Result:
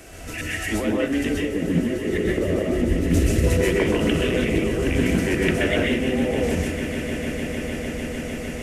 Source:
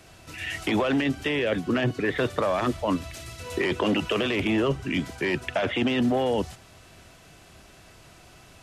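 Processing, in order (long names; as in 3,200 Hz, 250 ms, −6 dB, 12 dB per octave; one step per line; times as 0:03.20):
0:01.29–0:03.48: low shelf with overshoot 590 Hz +11.5 dB, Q 1.5
volume swells 204 ms
hum removal 183.1 Hz, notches 2
compressor whose output falls as the input rises −31 dBFS, ratio −1
octave-band graphic EQ 125/1,000/4,000 Hz −12/−10/−11 dB
echo that builds up and dies away 151 ms, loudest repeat 8, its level −16 dB
convolution reverb RT60 0.40 s, pre-delay 122 ms, DRR −2 dB
highs frequency-modulated by the lows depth 0.23 ms
level +6 dB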